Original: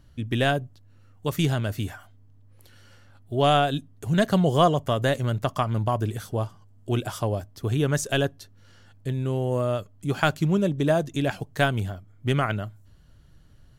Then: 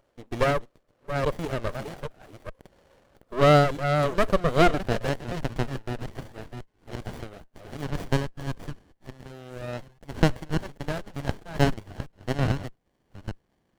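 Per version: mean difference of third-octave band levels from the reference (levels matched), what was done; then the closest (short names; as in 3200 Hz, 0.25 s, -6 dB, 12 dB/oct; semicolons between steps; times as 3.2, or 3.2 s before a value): 7.5 dB: reverse delay 0.416 s, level -6 dB; HPF 260 Hz 12 dB/oct; high-pass sweep 540 Hz -> 1400 Hz, 4.35–5.35; running maximum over 33 samples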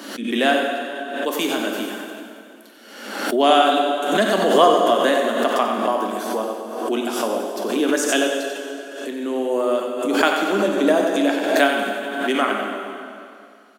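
12.5 dB: steep high-pass 220 Hz 72 dB/oct; echo 92 ms -7.5 dB; plate-style reverb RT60 2.5 s, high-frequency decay 0.85×, DRR 1.5 dB; backwards sustainer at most 52 dB/s; gain +4 dB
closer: first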